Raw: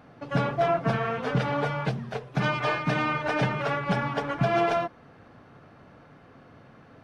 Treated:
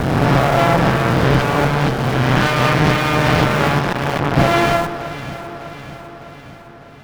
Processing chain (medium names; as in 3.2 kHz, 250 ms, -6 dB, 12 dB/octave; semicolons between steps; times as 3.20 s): reverse spectral sustain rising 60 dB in 2.27 s; bass shelf 72 Hz +11 dB; in parallel at -8 dB: Schmitt trigger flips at -28 dBFS; on the sum: Chebyshev shaper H 4 -7 dB, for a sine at -8 dBFS; on a send: echo whose repeats swap between lows and highs 302 ms, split 1.5 kHz, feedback 74%, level -11 dB; 3.79–4.37 s: on the sum: transformer saturation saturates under 840 Hz; trim +2 dB